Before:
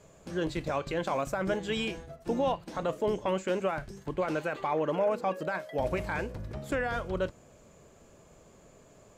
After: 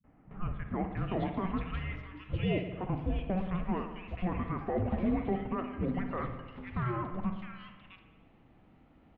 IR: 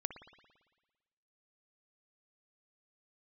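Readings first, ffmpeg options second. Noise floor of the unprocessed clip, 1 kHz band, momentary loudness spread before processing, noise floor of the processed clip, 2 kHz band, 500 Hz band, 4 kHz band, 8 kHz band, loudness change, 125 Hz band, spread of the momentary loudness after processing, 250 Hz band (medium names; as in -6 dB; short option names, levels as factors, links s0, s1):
-58 dBFS, -5.0 dB, 6 LU, -62 dBFS, -8.0 dB, -8.5 dB, -8.5 dB, under -30 dB, -3.0 dB, +4.5 dB, 11 LU, +2.0 dB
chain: -filter_complex "[0:a]acrossover=split=240|2400[s0][s1][s2];[s1]adelay=40[s3];[s2]adelay=700[s4];[s0][s3][s4]amix=inputs=3:normalize=0[s5];[1:a]atrim=start_sample=2205[s6];[s5][s6]afir=irnorm=-1:irlink=0,highpass=f=220:t=q:w=0.5412,highpass=f=220:t=q:w=1.307,lowpass=f=3500:t=q:w=0.5176,lowpass=f=3500:t=q:w=0.7071,lowpass=f=3500:t=q:w=1.932,afreqshift=-370"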